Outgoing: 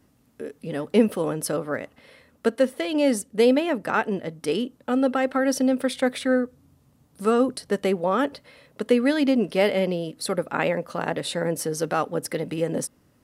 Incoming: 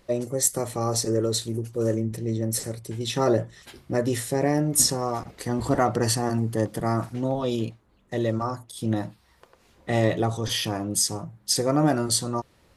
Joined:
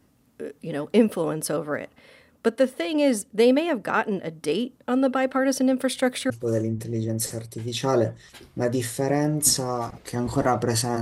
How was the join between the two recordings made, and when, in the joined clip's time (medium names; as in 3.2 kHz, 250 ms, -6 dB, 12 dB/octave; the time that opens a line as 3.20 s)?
outgoing
5.81–6.30 s: treble shelf 5.8 kHz +6.5 dB
6.30 s: go over to incoming from 1.63 s